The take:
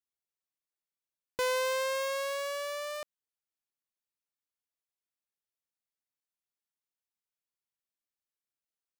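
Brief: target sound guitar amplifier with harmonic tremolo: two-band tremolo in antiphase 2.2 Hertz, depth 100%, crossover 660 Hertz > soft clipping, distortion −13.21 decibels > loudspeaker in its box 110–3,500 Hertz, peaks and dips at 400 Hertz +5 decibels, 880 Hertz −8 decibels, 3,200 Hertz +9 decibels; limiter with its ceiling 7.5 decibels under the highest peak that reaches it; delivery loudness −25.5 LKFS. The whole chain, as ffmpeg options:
ffmpeg -i in.wav -filter_complex "[0:a]alimiter=level_in=7dB:limit=-24dB:level=0:latency=1,volume=-7dB,acrossover=split=660[link_01][link_02];[link_01]aeval=exprs='val(0)*(1-1/2+1/2*cos(2*PI*2.2*n/s))':channel_layout=same[link_03];[link_02]aeval=exprs='val(0)*(1-1/2-1/2*cos(2*PI*2.2*n/s))':channel_layout=same[link_04];[link_03][link_04]amix=inputs=2:normalize=0,asoftclip=threshold=-37dB,highpass=110,equalizer=frequency=400:width_type=q:width=4:gain=5,equalizer=frequency=880:width_type=q:width=4:gain=-8,equalizer=frequency=3200:width_type=q:width=4:gain=9,lowpass=frequency=3500:width=0.5412,lowpass=frequency=3500:width=1.3066,volume=18dB" out.wav

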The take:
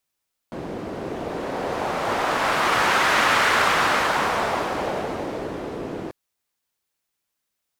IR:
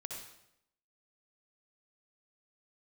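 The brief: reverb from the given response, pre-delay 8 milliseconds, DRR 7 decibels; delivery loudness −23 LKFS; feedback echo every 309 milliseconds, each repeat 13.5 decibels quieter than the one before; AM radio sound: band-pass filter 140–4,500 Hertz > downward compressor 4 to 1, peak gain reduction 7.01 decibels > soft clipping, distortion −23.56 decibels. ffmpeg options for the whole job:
-filter_complex "[0:a]aecho=1:1:309|618:0.211|0.0444,asplit=2[link_01][link_02];[1:a]atrim=start_sample=2205,adelay=8[link_03];[link_02][link_03]afir=irnorm=-1:irlink=0,volume=-5.5dB[link_04];[link_01][link_04]amix=inputs=2:normalize=0,highpass=140,lowpass=4500,acompressor=threshold=-22dB:ratio=4,asoftclip=threshold=-15.5dB,volume=4dB"

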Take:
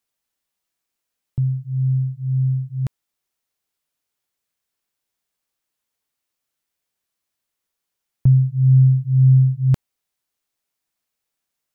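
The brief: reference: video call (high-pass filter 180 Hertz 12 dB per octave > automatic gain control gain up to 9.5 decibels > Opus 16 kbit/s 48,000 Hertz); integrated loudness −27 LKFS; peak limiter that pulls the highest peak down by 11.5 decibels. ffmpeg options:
ffmpeg -i in.wav -af "alimiter=limit=-19dB:level=0:latency=1,highpass=180,dynaudnorm=maxgain=9.5dB,volume=5dB" -ar 48000 -c:a libopus -b:a 16k out.opus

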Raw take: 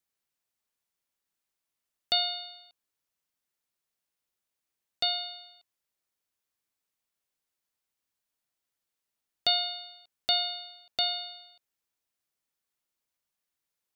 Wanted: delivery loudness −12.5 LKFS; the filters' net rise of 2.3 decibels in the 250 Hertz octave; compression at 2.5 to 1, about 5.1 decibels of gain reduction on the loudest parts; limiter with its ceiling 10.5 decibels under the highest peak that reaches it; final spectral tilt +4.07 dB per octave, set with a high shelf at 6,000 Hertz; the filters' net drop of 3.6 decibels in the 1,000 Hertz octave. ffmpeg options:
ffmpeg -i in.wav -af "equalizer=frequency=250:width_type=o:gain=3.5,equalizer=frequency=1000:width_type=o:gain=-7.5,highshelf=frequency=6000:gain=-5.5,acompressor=threshold=-31dB:ratio=2.5,volume=25dB,alimiter=limit=-1.5dB:level=0:latency=1" out.wav

